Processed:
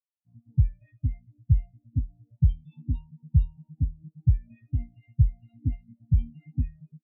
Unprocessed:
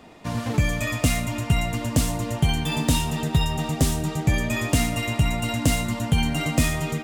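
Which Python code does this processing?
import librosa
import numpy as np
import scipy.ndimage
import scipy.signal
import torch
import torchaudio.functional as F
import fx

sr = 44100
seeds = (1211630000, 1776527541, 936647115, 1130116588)

y = fx.spectral_expand(x, sr, expansion=4.0)
y = F.gain(torch.from_numpy(y), 2.5).numpy()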